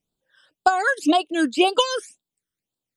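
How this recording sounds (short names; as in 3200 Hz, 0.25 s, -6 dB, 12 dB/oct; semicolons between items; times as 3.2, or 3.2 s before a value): phasing stages 12, 1.9 Hz, lowest notch 750–2100 Hz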